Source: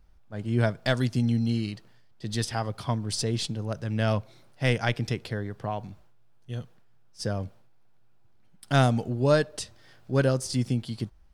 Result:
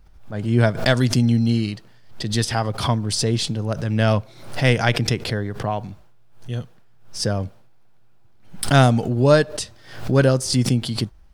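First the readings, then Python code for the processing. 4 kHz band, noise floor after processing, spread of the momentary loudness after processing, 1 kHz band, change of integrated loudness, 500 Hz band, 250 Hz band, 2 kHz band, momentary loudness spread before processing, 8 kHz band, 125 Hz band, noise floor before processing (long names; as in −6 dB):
+9.0 dB, −48 dBFS, 15 LU, +7.5 dB, +7.5 dB, +7.5 dB, +7.5 dB, +7.5 dB, 15 LU, +9.0 dB, +7.5 dB, −55 dBFS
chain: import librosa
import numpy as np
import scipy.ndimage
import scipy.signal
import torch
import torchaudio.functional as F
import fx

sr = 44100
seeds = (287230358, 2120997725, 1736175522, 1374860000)

y = fx.pre_swell(x, sr, db_per_s=100.0)
y = F.gain(torch.from_numpy(y), 7.0).numpy()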